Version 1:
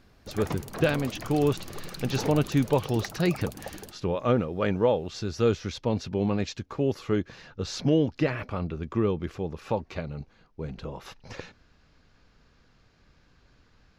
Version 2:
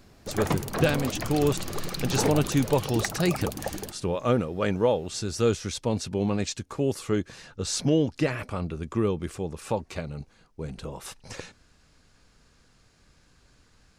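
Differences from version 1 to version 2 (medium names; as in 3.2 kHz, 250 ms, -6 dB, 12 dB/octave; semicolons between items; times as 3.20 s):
speech: remove boxcar filter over 5 samples; background +7.0 dB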